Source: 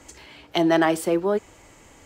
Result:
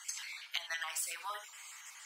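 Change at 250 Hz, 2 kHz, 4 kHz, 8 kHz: under -40 dB, -10.0 dB, -7.0 dB, 0.0 dB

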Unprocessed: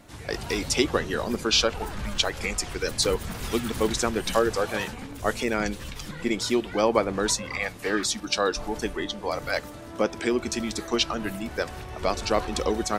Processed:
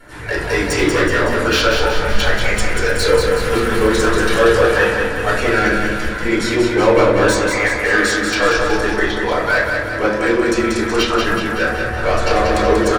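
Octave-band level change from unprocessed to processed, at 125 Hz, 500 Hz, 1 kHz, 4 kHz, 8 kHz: +12.0, +11.5, +11.5, +5.5, +3.5 dB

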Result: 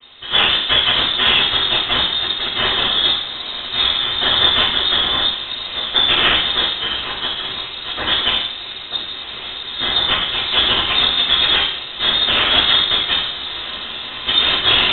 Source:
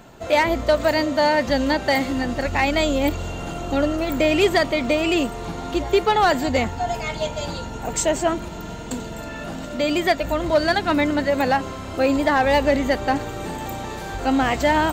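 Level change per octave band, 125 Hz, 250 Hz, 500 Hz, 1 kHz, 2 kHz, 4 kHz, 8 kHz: -4.5 dB, -10.5 dB, -10.0 dB, -2.0 dB, +4.5 dB, +18.5 dB, under -40 dB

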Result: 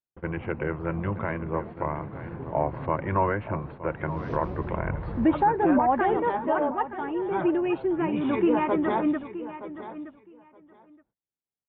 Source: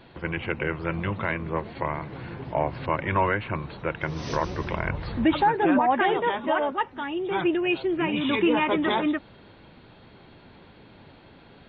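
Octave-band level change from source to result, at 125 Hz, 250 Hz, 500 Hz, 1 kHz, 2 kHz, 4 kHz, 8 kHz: 0.0 dB, 0.0 dB, 0.0 dB, -0.5 dB, -6.5 dB, under -15 dB, n/a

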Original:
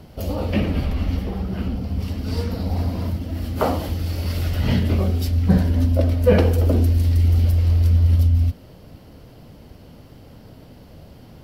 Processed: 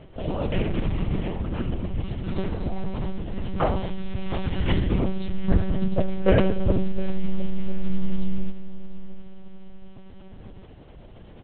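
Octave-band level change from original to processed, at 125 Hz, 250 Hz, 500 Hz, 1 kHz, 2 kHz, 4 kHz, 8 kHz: -10.0 dB, -3.0 dB, -3.5 dB, -2.0 dB, -2.0 dB, -4.5 dB, under -35 dB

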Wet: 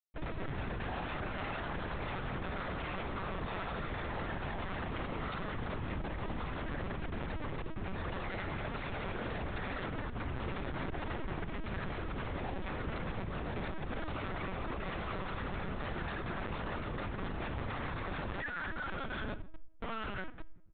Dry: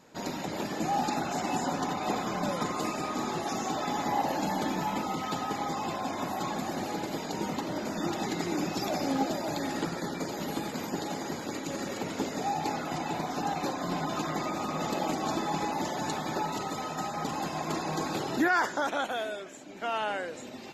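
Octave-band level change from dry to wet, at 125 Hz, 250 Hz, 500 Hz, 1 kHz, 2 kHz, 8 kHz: 0.0 dB, -9.5 dB, -8.0 dB, -11.0 dB, -4.5 dB, under -40 dB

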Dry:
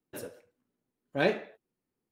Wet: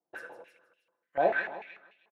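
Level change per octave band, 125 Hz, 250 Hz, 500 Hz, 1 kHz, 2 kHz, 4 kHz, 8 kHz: -13.0 dB, -8.0 dB, +1.0 dB, +7.5 dB, +3.0 dB, under -10 dB, n/a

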